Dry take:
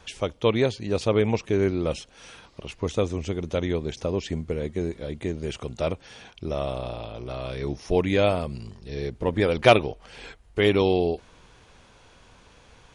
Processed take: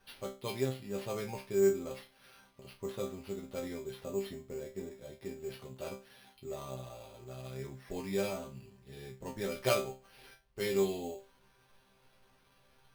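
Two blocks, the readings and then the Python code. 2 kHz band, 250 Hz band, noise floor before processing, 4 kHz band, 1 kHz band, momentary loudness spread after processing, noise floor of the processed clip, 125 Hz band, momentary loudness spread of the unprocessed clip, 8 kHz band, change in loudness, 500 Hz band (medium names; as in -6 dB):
-14.0 dB, -13.0 dB, -55 dBFS, -13.0 dB, -15.0 dB, 18 LU, -68 dBFS, -15.5 dB, 16 LU, -2.5 dB, -11.5 dB, -11.0 dB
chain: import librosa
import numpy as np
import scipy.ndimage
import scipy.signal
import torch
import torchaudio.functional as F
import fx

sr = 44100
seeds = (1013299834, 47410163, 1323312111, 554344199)

y = fx.resonator_bank(x, sr, root=48, chord='fifth', decay_s=0.31)
y = fx.sample_hold(y, sr, seeds[0], rate_hz=7300.0, jitter_pct=0)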